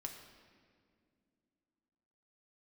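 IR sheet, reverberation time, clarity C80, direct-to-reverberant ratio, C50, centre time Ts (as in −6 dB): non-exponential decay, 7.5 dB, 2.5 dB, 6.0 dB, 37 ms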